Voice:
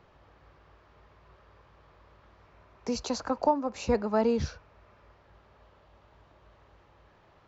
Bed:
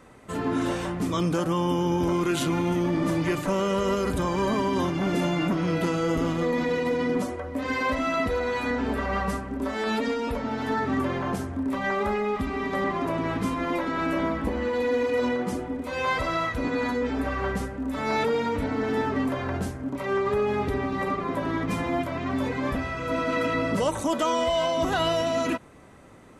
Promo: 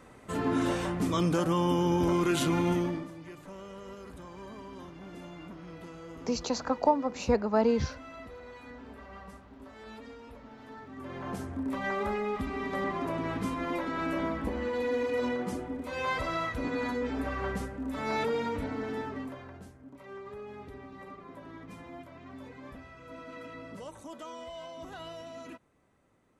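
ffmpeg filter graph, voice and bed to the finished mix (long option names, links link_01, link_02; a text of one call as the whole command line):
ffmpeg -i stem1.wav -i stem2.wav -filter_complex "[0:a]adelay=3400,volume=0.5dB[link_01];[1:a]volume=13dB,afade=type=out:start_time=2.72:duration=0.36:silence=0.11885,afade=type=in:start_time=10.95:duration=0.56:silence=0.177828,afade=type=out:start_time=18.43:duration=1.11:silence=0.211349[link_02];[link_01][link_02]amix=inputs=2:normalize=0" out.wav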